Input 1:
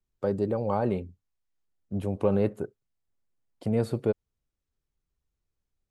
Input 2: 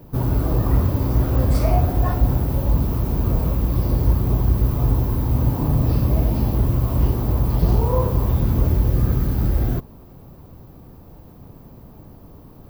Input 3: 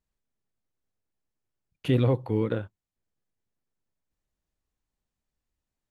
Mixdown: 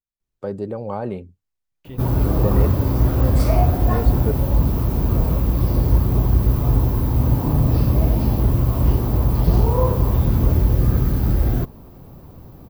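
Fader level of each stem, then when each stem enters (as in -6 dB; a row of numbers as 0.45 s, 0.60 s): 0.0 dB, +1.5 dB, -14.5 dB; 0.20 s, 1.85 s, 0.00 s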